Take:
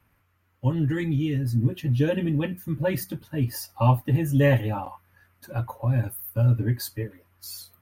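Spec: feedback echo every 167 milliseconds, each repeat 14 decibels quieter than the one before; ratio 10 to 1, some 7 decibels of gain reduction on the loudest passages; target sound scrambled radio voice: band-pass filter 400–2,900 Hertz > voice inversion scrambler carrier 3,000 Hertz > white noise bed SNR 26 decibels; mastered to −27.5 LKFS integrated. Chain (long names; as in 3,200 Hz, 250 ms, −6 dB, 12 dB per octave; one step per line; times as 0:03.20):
downward compressor 10 to 1, threshold −22 dBFS
band-pass filter 400–2,900 Hz
repeating echo 167 ms, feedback 20%, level −14 dB
voice inversion scrambler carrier 3,000 Hz
white noise bed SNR 26 dB
level +6.5 dB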